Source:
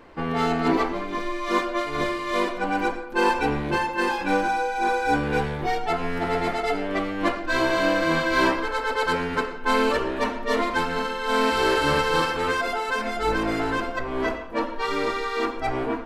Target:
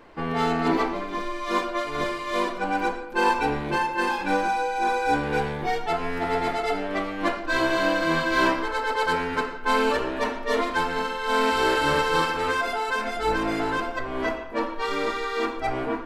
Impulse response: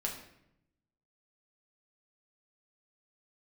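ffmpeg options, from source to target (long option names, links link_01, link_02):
-filter_complex "[0:a]asplit=2[link_01][link_02];[1:a]atrim=start_sample=2205,lowshelf=frequency=200:gain=-11[link_03];[link_02][link_03]afir=irnorm=-1:irlink=0,volume=-6dB[link_04];[link_01][link_04]amix=inputs=2:normalize=0,volume=-4dB"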